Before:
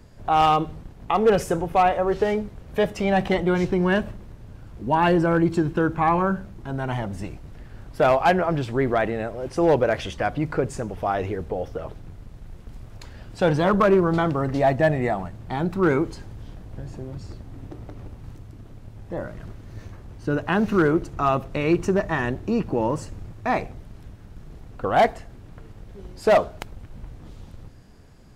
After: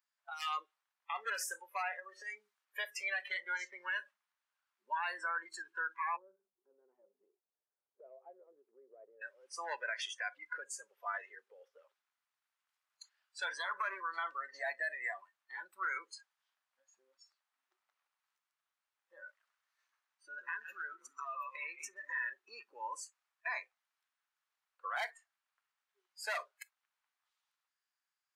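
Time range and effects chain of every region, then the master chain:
0:01.99–0:02.65: bass and treble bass +7 dB, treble +5 dB + downward compressor 10 to 1, threshold −21 dBFS
0:06.16–0:09.22: low-pass with resonance 430 Hz, resonance Q 2.8 + downward compressor 2 to 1, threshold −29 dBFS
0:19.31–0:22.33: echo with shifted repeats 128 ms, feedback 44%, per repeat −80 Hz, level −9.5 dB + downward compressor 16 to 1, threshold −22 dBFS
whole clip: high-pass filter 1,100 Hz 24 dB per octave; noise reduction from a noise print of the clip's start 25 dB; brickwall limiter −25.5 dBFS; level −3 dB

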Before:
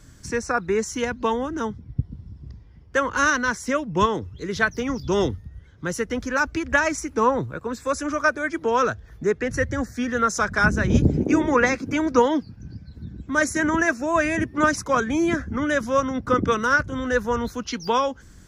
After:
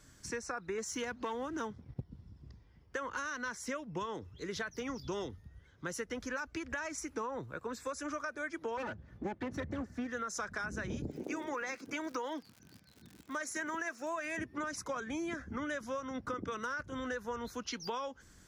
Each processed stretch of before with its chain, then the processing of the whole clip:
0:00.78–0:02.04: high-pass filter 56 Hz + leveller curve on the samples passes 1
0:08.77–0:10.07: lower of the sound and its delayed copy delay 3.4 ms + high-pass filter 82 Hz 24 dB per octave + RIAA equalisation playback
0:11.10–0:14.37: high-pass filter 410 Hz 6 dB per octave + surface crackle 150 per second −37 dBFS
whole clip: low-shelf EQ 270 Hz −8.5 dB; brickwall limiter −15 dBFS; downward compressor, threshold −29 dBFS; level −6.5 dB

